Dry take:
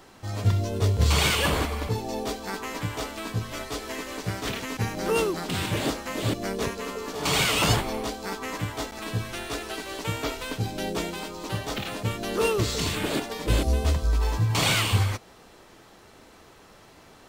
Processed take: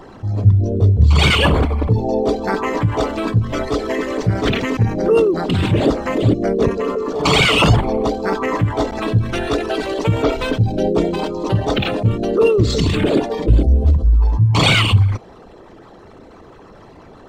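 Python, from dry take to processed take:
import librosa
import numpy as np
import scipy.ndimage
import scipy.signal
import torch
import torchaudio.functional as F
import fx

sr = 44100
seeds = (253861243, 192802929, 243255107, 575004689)

p1 = fx.envelope_sharpen(x, sr, power=2.0)
p2 = fx.rider(p1, sr, range_db=4, speed_s=0.5)
p3 = p1 + (p2 * librosa.db_to_amplitude(-1.0))
y = p3 * librosa.db_to_amplitude(6.0)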